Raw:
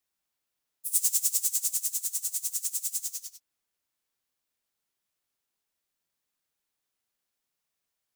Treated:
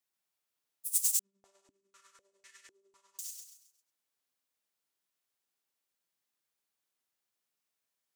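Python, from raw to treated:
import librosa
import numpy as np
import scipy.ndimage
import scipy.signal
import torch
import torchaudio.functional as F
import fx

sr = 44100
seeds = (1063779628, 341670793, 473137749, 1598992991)

y = fx.highpass(x, sr, hz=160.0, slope=6)
y = fx.echo_feedback(y, sr, ms=133, feedback_pct=35, wet_db=-5)
y = fx.filter_held_lowpass(y, sr, hz=4.0, low_hz=210.0, high_hz=1800.0, at=(1.19, 3.19))
y = y * librosa.db_to_amplitude(-4.0)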